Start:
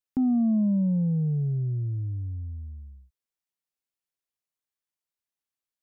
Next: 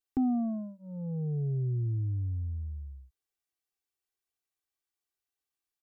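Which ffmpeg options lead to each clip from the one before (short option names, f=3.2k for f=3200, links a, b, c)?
-af "aecho=1:1:2.6:0.99,volume=-3dB"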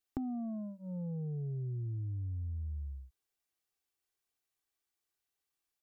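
-af "acompressor=threshold=-38dB:ratio=6,volume=2dB"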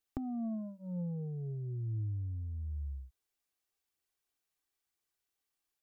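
-af "aphaser=in_gain=1:out_gain=1:delay=4.8:decay=0.24:speed=1:type=triangular"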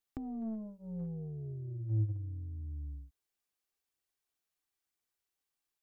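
-af "asoftclip=type=tanh:threshold=-26.5dB,tremolo=f=220:d=0.333,agate=range=-12dB:threshold=-36dB:ratio=16:detection=peak,volume=11.5dB"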